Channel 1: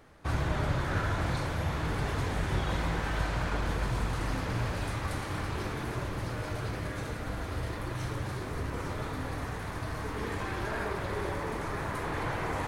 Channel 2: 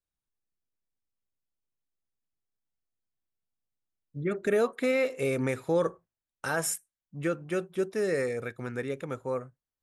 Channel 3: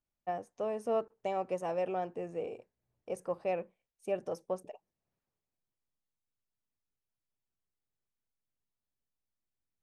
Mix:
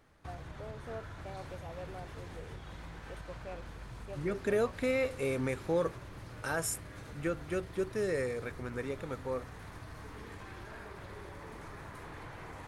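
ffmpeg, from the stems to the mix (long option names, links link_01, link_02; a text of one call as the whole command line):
ffmpeg -i stem1.wav -i stem2.wav -i stem3.wav -filter_complex "[0:a]equalizer=frequency=540:width_type=o:width=2.5:gain=-2.5,acompressor=threshold=-36dB:ratio=6,volume=-7dB[link_01];[1:a]volume=-4.5dB[link_02];[2:a]volume=-12.5dB[link_03];[link_01][link_02][link_03]amix=inputs=3:normalize=0" out.wav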